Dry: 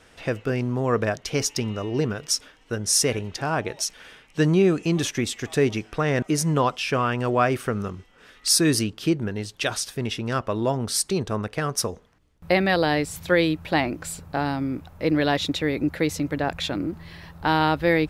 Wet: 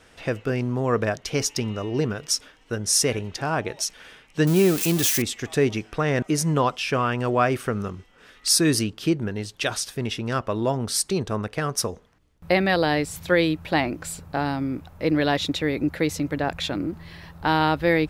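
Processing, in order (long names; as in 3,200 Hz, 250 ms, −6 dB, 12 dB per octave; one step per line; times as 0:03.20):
0:04.47–0:05.22: spike at every zero crossing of −15.5 dBFS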